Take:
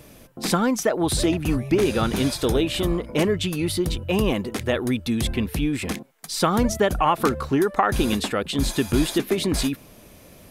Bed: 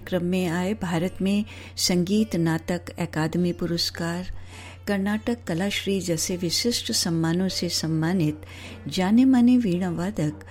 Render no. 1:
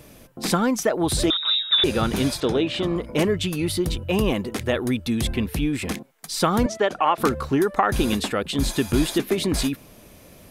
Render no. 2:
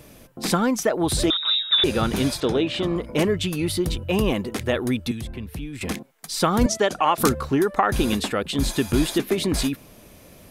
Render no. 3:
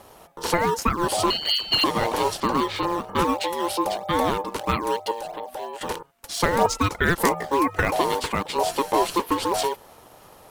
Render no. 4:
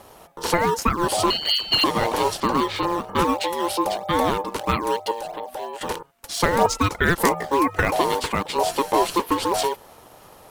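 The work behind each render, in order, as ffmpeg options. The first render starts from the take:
-filter_complex "[0:a]asettb=1/sr,asplit=3[a][b][c];[a]atrim=end=1.304[d];[b]atrim=start=1.3:end=1.84,asetpts=PTS-STARTPTS,afade=t=in:d=0.004:c=qsin,afade=t=out:st=0.536:d=0.004:c=qsin,lowpass=f=3.3k:t=q:w=0.5098,lowpass=f=3.3k:t=q:w=0.6013,lowpass=f=3.3k:t=q:w=0.9,lowpass=f=3.3k:t=q:w=2.563,afreqshift=-3900[e];[c]atrim=start=1.836[f];[d][e]acrossfade=d=0.004:c1=hsin:c2=qsin[g];[g][f]acrossfade=d=0.004:c1=qsin:c2=hsin,asettb=1/sr,asplit=3[h][i][j];[h]atrim=end=2.404[k];[i]atrim=start=2.4:end=2.96,asetpts=PTS-STARTPTS,afade=t=in:d=0.004:c=qsin,afade=t=out:st=0.556:d=0.004:c=qsin,highpass=120,lowpass=4.8k[l];[j]atrim=start=2.956[m];[k][l]acrossfade=d=0.004:c1=hsin:c2=qsin[n];[n][m]acrossfade=d=0.004:c1=qsin:c2=hsin,asettb=1/sr,asplit=3[o][p][q];[o]atrim=end=6.664[r];[p]atrim=start=6.66:end=7.18,asetpts=PTS-STARTPTS,afade=t=in:d=0.004:c=qsin,afade=t=out:st=0.516:d=0.004:c=qsin,highpass=330,lowpass=5.4k[s];[q]atrim=start=7.176[t];[r][s]acrossfade=d=0.004:c1=hsin:c2=qsin[u];[u][t]acrossfade=d=0.004:c1=qsin:c2=hsin"
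-filter_complex "[0:a]asettb=1/sr,asplit=3[a][b][c];[a]atrim=end=5.114[d];[b]atrim=start=5.11:end=5.81,asetpts=PTS-STARTPTS,afade=t=in:d=0.004:c=qsin,afade=t=out:st=0.696:d=0.004:c=qsin,acrossover=split=140|1600[e][f][g];[e]acompressor=threshold=-33dB:ratio=4[h];[f]acompressor=threshold=-37dB:ratio=4[i];[g]acompressor=threshold=-44dB:ratio=4[j];[h][i][j]amix=inputs=3:normalize=0[k];[c]atrim=start=5.806[l];[d][k]acrossfade=d=0.004:c1=hsin:c2=qsin[m];[m][l]acrossfade=d=0.004:c1=qsin:c2=hsin,asettb=1/sr,asplit=3[n][o][p];[n]atrim=end=6.614[q];[o]atrim=start=6.61:end=7.33,asetpts=PTS-STARTPTS,afade=t=in:d=0.004:c=qsin,afade=t=out:st=0.716:d=0.004:c=qsin,bass=f=250:g=5,treble=f=4k:g=11[r];[p]atrim=start=7.326[s];[q][r]acrossfade=d=0.004:c1=hsin:c2=qsin[t];[t][s]acrossfade=d=0.004:c1=qsin:c2=hsin"
-filter_complex "[0:a]aeval=exprs='val(0)*sin(2*PI*690*n/s)':c=same,asplit=2[a][b];[b]acrusher=samples=11:mix=1:aa=0.000001:lfo=1:lforange=17.6:lforate=3.1,volume=-11dB[c];[a][c]amix=inputs=2:normalize=0"
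-af "volume=1.5dB"

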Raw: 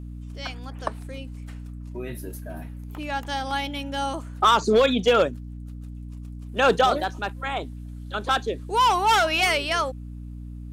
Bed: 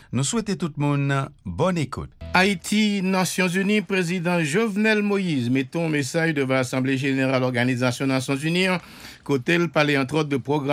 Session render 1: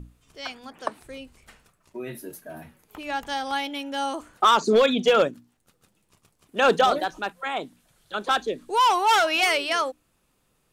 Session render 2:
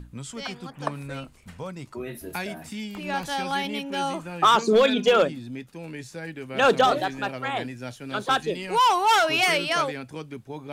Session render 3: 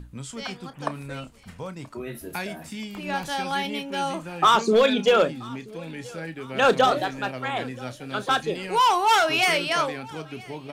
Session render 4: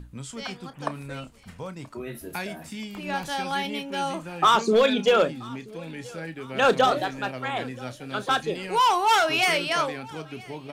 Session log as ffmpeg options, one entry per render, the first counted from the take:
-af "bandreject=f=60:t=h:w=6,bandreject=f=120:t=h:w=6,bandreject=f=180:t=h:w=6,bandreject=f=240:t=h:w=6,bandreject=f=300:t=h:w=6"
-filter_complex "[1:a]volume=-14.5dB[a];[0:a][a]amix=inputs=2:normalize=0"
-filter_complex "[0:a]asplit=2[a][b];[b]adelay=31,volume=-13dB[c];[a][c]amix=inputs=2:normalize=0,aecho=1:1:979|1958|2937:0.0668|0.0327|0.016"
-af "volume=-1dB"

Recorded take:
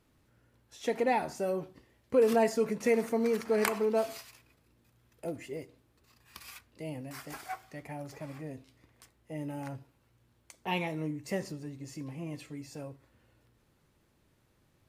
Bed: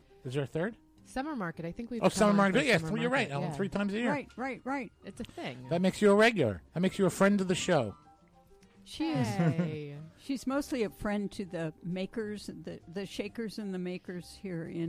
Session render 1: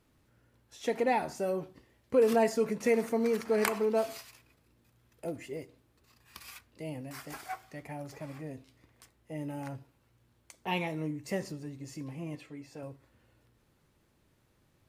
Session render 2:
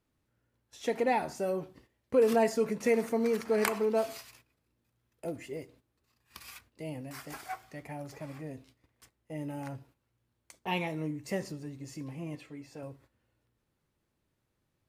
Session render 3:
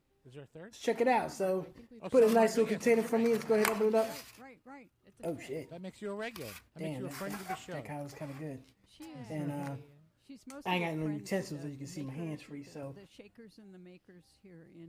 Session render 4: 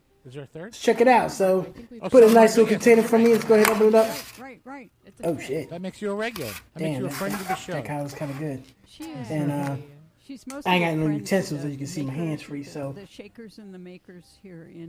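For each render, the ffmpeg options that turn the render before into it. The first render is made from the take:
-filter_complex "[0:a]asettb=1/sr,asplit=3[a][b][c];[a]atrim=end=12.354[d];[b]atrim=start=12.35:end=12.83,asetpts=PTS-STARTPTS,afade=t=in:d=0.004:c=qsin,afade=t=out:st=0.476:d=0.004:c=qsin,bass=f=250:g=-6,treble=f=4k:g=-9[e];[c]atrim=start=12.826[f];[d][e]acrossfade=d=0.004:c1=hsin:c2=qsin[g];[g][f]acrossfade=d=0.004:c1=qsin:c2=hsin"
-af "agate=range=-10dB:threshold=-59dB:ratio=16:detection=peak"
-filter_complex "[1:a]volume=-16.5dB[a];[0:a][a]amix=inputs=2:normalize=0"
-af "volume=11.5dB,alimiter=limit=-2dB:level=0:latency=1"

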